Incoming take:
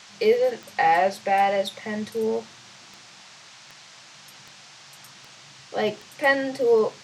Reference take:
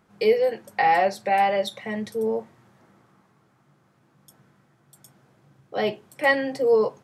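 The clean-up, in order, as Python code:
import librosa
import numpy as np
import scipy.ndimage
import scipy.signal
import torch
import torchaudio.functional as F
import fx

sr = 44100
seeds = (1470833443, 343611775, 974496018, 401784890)

y = fx.fix_declick_ar(x, sr, threshold=10.0)
y = fx.noise_reduce(y, sr, print_start_s=3.01, print_end_s=3.51, reduce_db=14.0)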